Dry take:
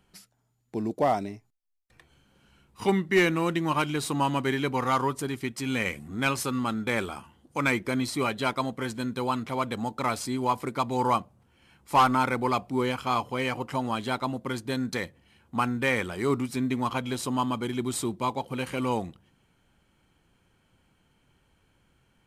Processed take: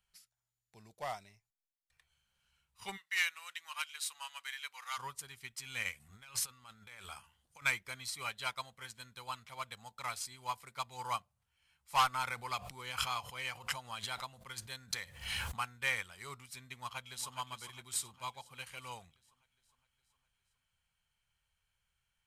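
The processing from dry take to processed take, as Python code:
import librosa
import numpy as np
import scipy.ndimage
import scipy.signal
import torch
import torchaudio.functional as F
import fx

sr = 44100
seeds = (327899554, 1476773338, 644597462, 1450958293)

y = fx.highpass(x, sr, hz=1300.0, slope=12, at=(2.96, 4.97), fade=0.02)
y = fx.over_compress(y, sr, threshold_db=-34.0, ratio=-1.0, at=(6.0, 7.62))
y = fx.pre_swell(y, sr, db_per_s=27.0, at=(12.15, 15.56), fade=0.02)
y = fx.echo_throw(y, sr, start_s=16.75, length_s=0.61, ms=410, feedback_pct=60, wet_db=-8.5)
y = fx.tone_stack(y, sr, knobs='10-0-10')
y = fx.upward_expand(y, sr, threshold_db=-45.0, expansion=1.5)
y = y * 10.0 ** (1.0 / 20.0)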